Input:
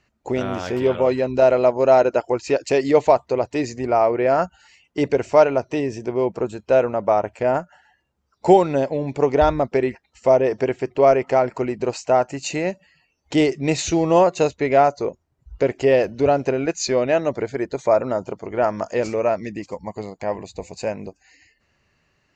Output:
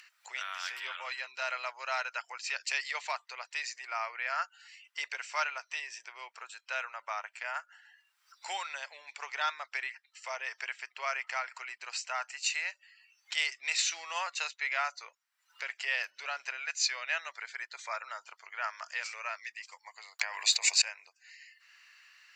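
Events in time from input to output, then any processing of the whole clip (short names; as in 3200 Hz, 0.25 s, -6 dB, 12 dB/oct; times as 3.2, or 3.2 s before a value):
20.19–20.82 fast leveller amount 100%
whole clip: HPF 1400 Hz 24 dB/oct; notch 6600 Hz, Q 10; upward compressor, threshold -45 dBFS; gain -1.5 dB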